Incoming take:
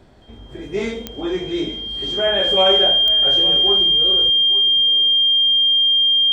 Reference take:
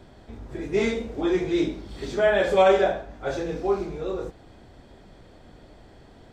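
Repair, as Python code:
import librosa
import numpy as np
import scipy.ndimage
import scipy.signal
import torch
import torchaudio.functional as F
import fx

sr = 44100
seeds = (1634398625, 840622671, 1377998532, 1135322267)

y = fx.fix_declick_ar(x, sr, threshold=10.0)
y = fx.notch(y, sr, hz=3200.0, q=30.0)
y = fx.fix_echo_inverse(y, sr, delay_ms=860, level_db=-16.0)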